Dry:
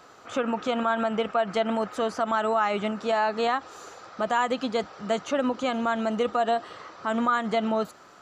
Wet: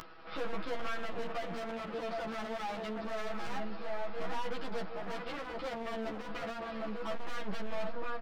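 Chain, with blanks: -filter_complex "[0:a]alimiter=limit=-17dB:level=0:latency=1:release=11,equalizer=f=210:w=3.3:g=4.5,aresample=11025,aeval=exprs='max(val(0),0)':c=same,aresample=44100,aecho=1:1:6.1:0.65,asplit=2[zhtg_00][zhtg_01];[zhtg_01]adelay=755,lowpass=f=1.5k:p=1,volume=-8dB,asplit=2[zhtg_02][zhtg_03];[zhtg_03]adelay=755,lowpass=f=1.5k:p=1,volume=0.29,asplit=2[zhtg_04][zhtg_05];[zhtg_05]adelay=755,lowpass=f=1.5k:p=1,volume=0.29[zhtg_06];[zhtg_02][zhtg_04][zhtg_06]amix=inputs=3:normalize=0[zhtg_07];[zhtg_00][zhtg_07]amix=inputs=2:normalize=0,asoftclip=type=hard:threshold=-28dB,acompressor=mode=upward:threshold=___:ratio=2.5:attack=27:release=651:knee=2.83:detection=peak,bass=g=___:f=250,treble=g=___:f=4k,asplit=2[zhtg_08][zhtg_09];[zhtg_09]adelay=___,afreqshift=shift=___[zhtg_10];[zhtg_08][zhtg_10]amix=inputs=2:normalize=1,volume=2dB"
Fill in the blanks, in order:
-48dB, -3, -6, 11.9, -0.27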